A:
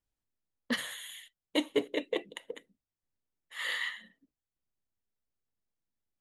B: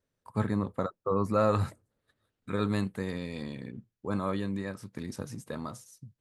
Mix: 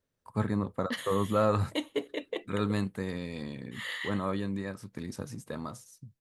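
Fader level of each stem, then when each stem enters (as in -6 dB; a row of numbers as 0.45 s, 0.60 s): -3.0 dB, -0.5 dB; 0.20 s, 0.00 s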